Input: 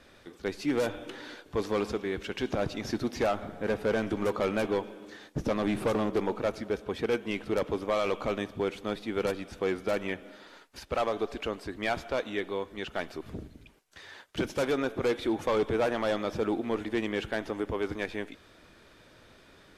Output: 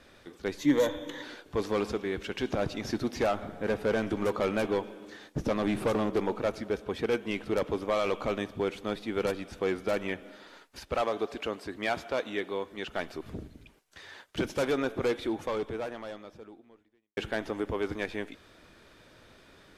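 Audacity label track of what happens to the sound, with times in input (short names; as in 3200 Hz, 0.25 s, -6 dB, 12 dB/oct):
0.580000	1.230000	ripple EQ crests per octave 1.1, crest to trough 12 dB
11.010000	12.890000	HPF 130 Hz 6 dB/oct
15.000000	17.170000	fade out quadratic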